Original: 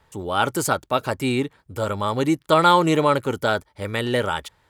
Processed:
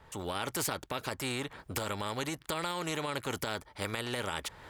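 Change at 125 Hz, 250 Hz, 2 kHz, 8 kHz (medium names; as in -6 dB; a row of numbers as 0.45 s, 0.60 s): -13.5 dB, -16.0 dB, -11.0 dB, -5.5 dB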